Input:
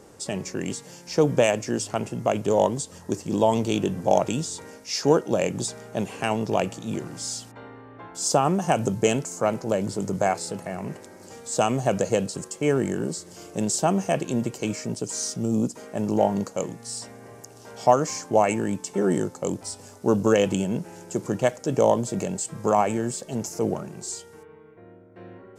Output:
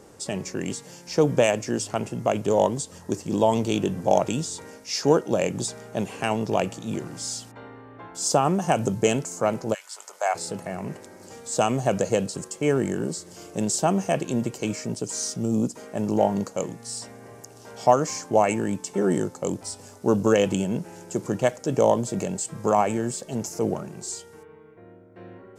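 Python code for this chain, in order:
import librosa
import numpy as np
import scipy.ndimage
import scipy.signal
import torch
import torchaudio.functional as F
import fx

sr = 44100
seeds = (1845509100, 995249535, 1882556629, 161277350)

y = fx.highpass(x, sr, hz=fx.line((9.73, 1400.0), (10.34, 540.0)), slope=24, at=(9.73, 10.34), fade=0.02)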